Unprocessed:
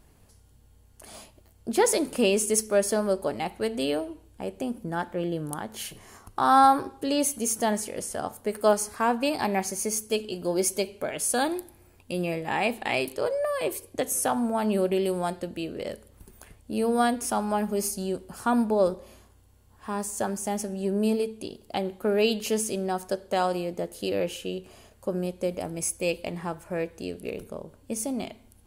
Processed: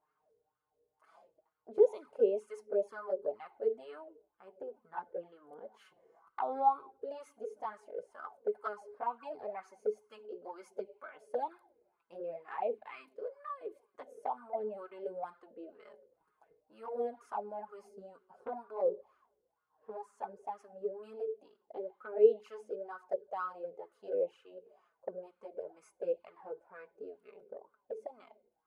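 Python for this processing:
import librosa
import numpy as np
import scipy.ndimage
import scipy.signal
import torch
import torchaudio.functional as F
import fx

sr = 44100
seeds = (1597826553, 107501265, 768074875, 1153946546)

y = fx.spec_box(x, sr, start_s=12.75, length_s=1.03, low_hz=340.0, high_hz=1000.0, gain_db=-9)
y = fx.wah_lfo(y, sr, hz=2.1, low_hz=460.0, high_hz=1300.0, q=7.2)
y = fx.env_flanger(y, sr, rest_ms=6.6, full_db=-28.5)
y = fx.small_body(y, sr, hz=(420.0, 1500.0, 2100.0), ring_ms=90, db=10)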